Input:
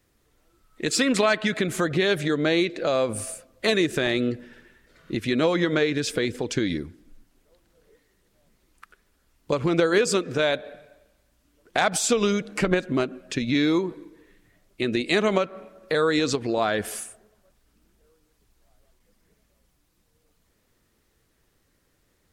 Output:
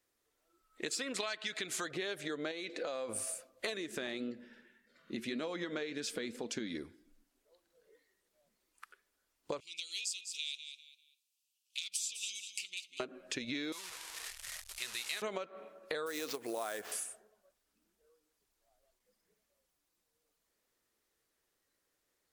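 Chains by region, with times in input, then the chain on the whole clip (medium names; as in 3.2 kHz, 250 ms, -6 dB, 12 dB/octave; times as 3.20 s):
1.20–1.91 s: peaking EQ 4.7 kHz +10.5 dB 2.5 oct + band-stop 550 Hz, Q 7.1
2.51–3.09 s: comb 4 ms, depth 38% + compression 4:1, threshold -25 dBFS
3.77–6.75 s: peaking EQ 220 Hz +14 dB 0.37 oct + flange 1.8 Hz, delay 4.4 ms, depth 3.2 ms, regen -87%
9.60–13.00 s: elliptic high-pass 2.6 kHz + feedback delay 198 ms, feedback 29%, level -12 dB
13.72–15.22 s: one-bit delta coder 64 kbps, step -27 dBFS + amplifier tone stack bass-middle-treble 10-0-10 + transformer saturation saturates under 390 Hz
16.06–16.92 s: high-pass 280 Hz 6 dB/octave + treble shelf 5.7 kHz -10 dB + sample-rate reducer 10 kHz, jitter 20%
whole clip: spectral noise reduction 7 dB; tone controls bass -14 dB, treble +3 dB; compression 10:1, threshold -30 dBFS; trim -5 dB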